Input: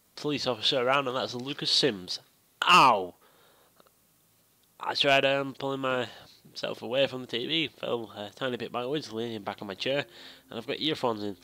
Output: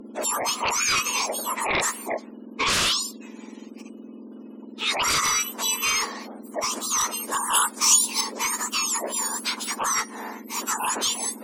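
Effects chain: spectrum mirrored in octaves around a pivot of 1800 Hz; in parallel at +2 dB: compressor 6:1, threshold -36 dBFS, peak gain reduction 18 dB; on the sum: wavefolder -22.5 dBFS; sample leveller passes 1; spectral gate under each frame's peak -30 dB strong; bell 770 Hz -11 dB 0.38 oct; treble ducked by the level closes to 2600 Hz, closed at -14.5 dBFS; 7.53–8.21 high shelf 3900 Hz +12 dB; gain +5.5 dB

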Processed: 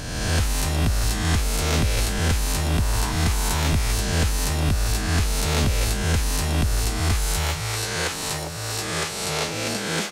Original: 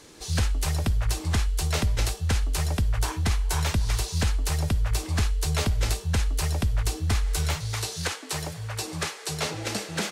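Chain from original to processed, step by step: spectral swells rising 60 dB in 1.55 s

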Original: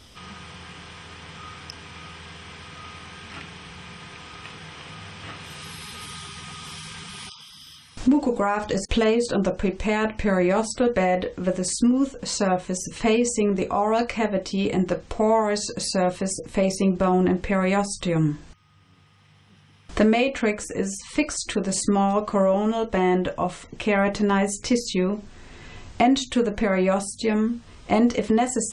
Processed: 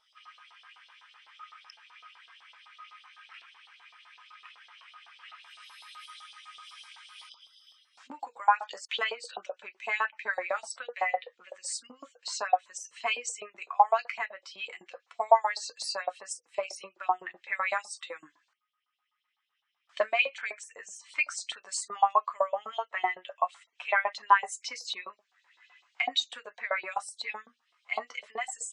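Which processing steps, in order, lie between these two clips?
LFO high-pass saw up 7.9 Hz 730–4300 Hz; spectral expander 1.5:1

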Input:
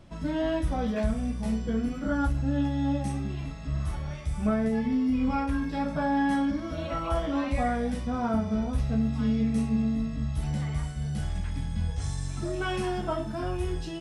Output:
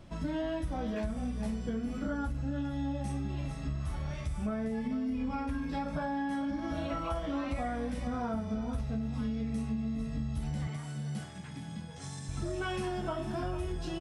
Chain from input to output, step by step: echo 0.446 s -12 dB; compressor, threshold -31 dBFS, peak gain reduction 10 dB; 10.67–12.29 HPF 130 Hz 24 dB/oct

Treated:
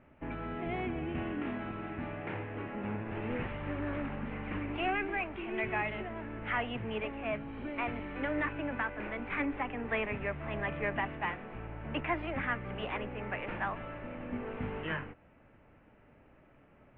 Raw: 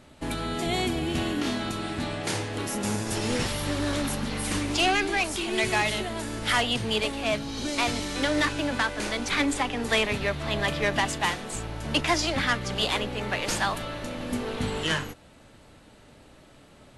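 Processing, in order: steep low-pass 2600 Hz 48 dB/oct; gain -8 dB

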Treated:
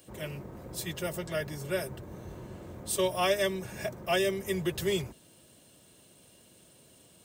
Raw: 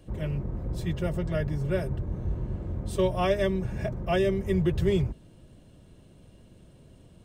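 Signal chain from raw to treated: HPF 55 Hz; RIAA curve recording

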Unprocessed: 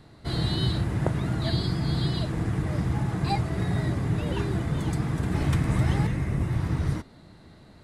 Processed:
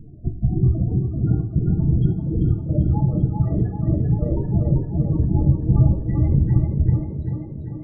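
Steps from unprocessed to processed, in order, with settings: tracing distortion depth 0.33 ms; reverb removal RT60 1 s; notches 50/100/150/200/250/300/350/400 Hz; reverb removal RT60 0.62 s; tilt -2.5 dB/oct; notch 990 Hz, Q 9.2; in parallel at 0 dB: limiter -15.5 dBFS, peak gain reduction 7.5 dB; on the sum: step gate "xx.xxxx." 106 bpm -60 dB; loudest bins only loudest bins 16; tape echo 0.392 s, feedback 71%, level -3 dB, low-pass 4700 Hz; on a send at -3 dB: reverb, pre-delay 3 ms; on the sum: gain -1.5 dB

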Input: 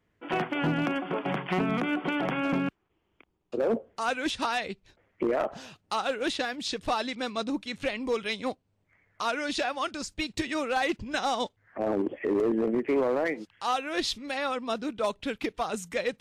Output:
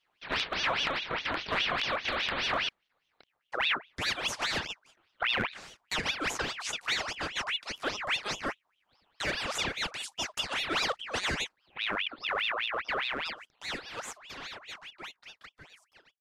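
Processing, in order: ending faded out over 5.37 s; ring modulator with a swept carrier 2000 Hz, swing 60%, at 4.9 Hz

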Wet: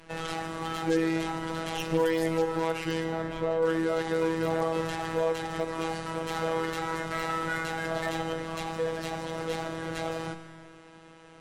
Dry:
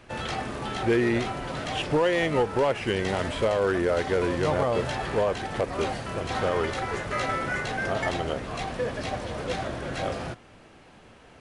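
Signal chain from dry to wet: tracing distortion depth 0.11 ms; 3.04–3.63 LPF 1200 Hz 6 dB/oct; in parallel at -0.5 dB: limiter -25.5 dBFS, peak gain reduction 9.5 dB; on the sum: flange 0.19 Hz, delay 2 ms, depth 6.4 ms, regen +89%; robotiser 163 Hz; wavefolder -14.5 dBFS; on a send at -9.5 dB: reverb RT60 1.9 s, pre-delay 32 ms; on the sum: MP3 64 kbps 44100 Hz

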